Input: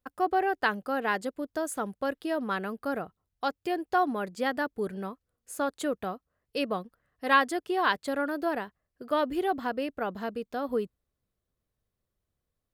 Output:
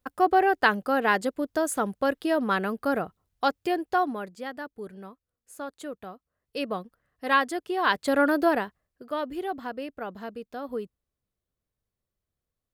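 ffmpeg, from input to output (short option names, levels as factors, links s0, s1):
-af "volume=11.9,afade=t=out:st=3.49:d=0.92:silence=0.237137,afade=t=in:st=6.13:d=0.59:silence=0.446684,afade=t=in:st=7.8:d=0.48:silence=0.354813,afade=t=out:st=8.28:d=0.78:silence=0.237137"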